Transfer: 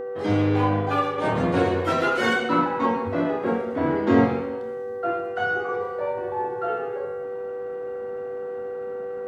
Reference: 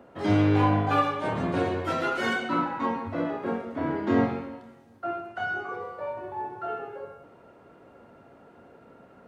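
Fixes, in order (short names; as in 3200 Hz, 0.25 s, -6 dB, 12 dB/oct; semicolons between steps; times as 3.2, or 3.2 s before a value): de-hum 386 Hz, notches 5; notch 490 Hz, Q 30; gain correction -5 dB, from 1.18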